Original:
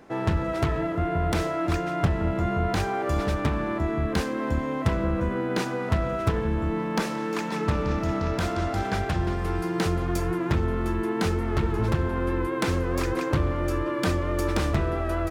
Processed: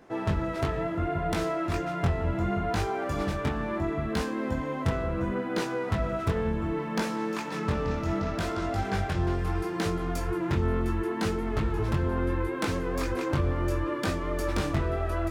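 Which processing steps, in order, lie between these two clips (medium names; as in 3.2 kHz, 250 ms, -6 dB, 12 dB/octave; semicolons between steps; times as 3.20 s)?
chorus 0.7 Hz, delay 18 ms, depth 4.8 ms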